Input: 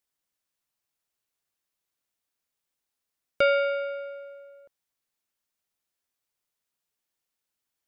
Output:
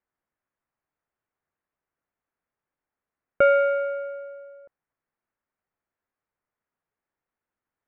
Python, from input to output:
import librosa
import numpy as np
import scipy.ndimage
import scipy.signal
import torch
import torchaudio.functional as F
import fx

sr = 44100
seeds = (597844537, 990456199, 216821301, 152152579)

y = scipy.signal.sosfilt(scipy.signal.butter(4, 1900.0, 'lowpass', fs=sr, output='sos'), x)
y = y * librosa.db_to_amplitude(4.5)